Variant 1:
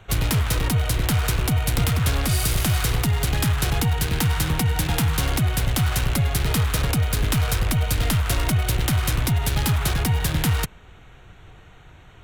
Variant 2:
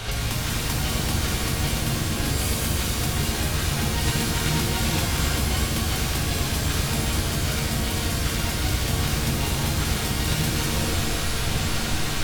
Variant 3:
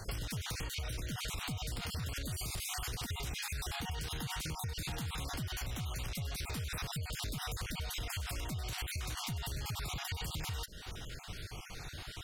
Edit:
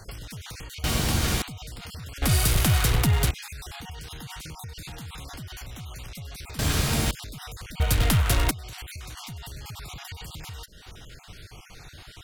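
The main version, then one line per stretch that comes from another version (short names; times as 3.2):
3
0.84–1.42 from 2
2.22–3.31 from 1
6.59–7.11 from 2
7.8–8.51 from 1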